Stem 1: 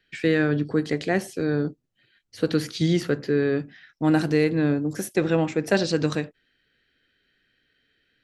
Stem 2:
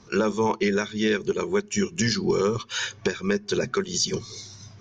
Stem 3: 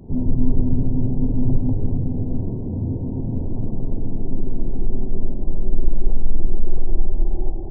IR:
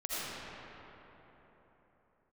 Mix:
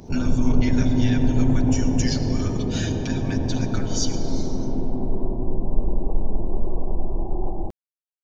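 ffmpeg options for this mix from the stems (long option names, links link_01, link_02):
-filter_complex "[1:a]highpass=1300,highshelf=frequency=4000:gain=7,asplit=2[link_01][link_02];[link_02]adelay=6.1,afreqshift=0.43[link_03];[link_01][link_03]amix=inputs=2:normalize=1,volume=-5.5dB,asplit=2[link_04][link_05];[link_05]volume=-12dB[link_06];[2:a]tiltshelf=frequency=660:gain=-8,volume=2.5dB,asplit=2[link_07][link_08];[link_08]volume=-5dB[link_09];[3:a]atrim=start_sample=2205[link_10];[link_06][link_09]amix=inputs=2:normalize=0[link_11];[link_11][link_10]afir=irnorm=-1:irlink=0[link_12];[link_04][link_07][link_12]amix=inputs=3:normalize=0"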